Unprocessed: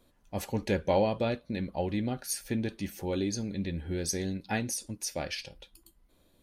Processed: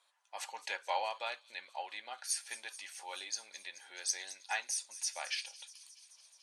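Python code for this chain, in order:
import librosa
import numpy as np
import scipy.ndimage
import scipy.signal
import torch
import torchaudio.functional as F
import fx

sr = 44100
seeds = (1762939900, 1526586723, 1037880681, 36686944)

y = scipy.signal.sosfilt(scipy.signal.ellip(3, 1.0, 80, [860.0, 9300.0], 'bandpass', fs=sr, output='sos'), x)
y = fx.echo_wet_highpass(y, sr, ms=215, feedback_pct=75, hz=5200.0, wet_db=-13.0)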